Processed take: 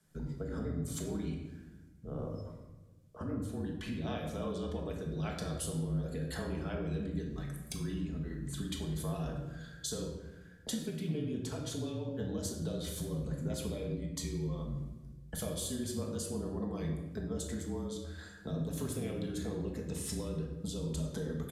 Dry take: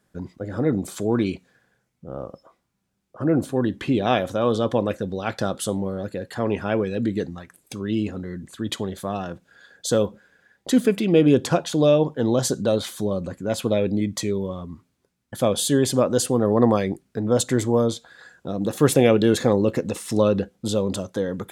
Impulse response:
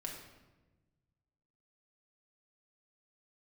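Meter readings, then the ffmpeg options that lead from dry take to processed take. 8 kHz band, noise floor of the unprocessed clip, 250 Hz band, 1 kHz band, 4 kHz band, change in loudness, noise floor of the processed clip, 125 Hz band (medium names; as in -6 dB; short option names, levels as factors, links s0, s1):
-12.0 dB, -73 dBFS, -15.0 dB, -19.5 dB, -13.5 dB, -16.0 dB, -54 dBFS, -9.5 dB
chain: -filter_complex "[0:a]highshelf=f=3600:g=9.5,bandreject=f=2700:w=27,acrossover=split=260|1200|4200[s0][s1][s2][s3];[s0]acontrast=72[s4];[s4][s1][s2][s3]amix=inputs=4:normalize=0,afreqshift=-34,acompressor=threshold=0.0398:ratio=16,aresample=32000,aresample=44100[s5];[1:a]atrim=start_sample=2205[s6];[s5][s6]afir=irnorm=-1:irlink=0,volume=0.562"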